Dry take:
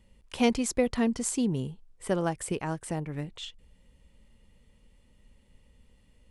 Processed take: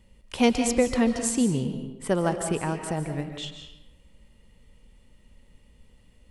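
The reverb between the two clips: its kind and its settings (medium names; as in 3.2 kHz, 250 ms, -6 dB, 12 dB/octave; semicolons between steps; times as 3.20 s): algorithmic reverb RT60 0.94 s, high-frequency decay 0.75×, pre-delay 105 ms, DRR 6.5 dB; trim +3.5 dB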